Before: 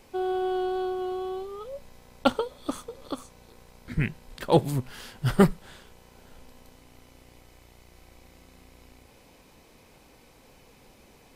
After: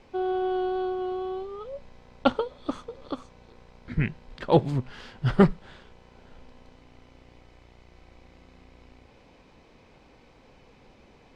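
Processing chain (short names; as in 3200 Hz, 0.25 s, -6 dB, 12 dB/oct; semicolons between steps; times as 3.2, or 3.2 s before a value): air absorption 150 m; gain +1 dB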